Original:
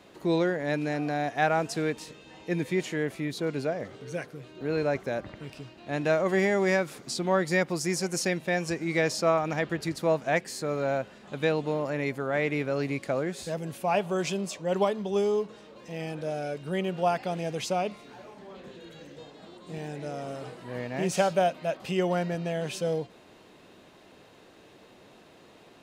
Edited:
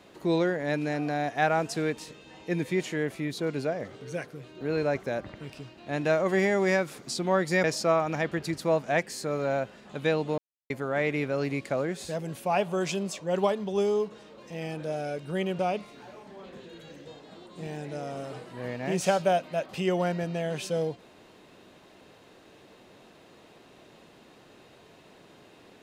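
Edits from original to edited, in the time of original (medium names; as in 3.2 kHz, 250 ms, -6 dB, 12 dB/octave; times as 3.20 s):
7.64–9.02 s: delete
11.76–12.08 s: mute
16.97–17.70 s: delete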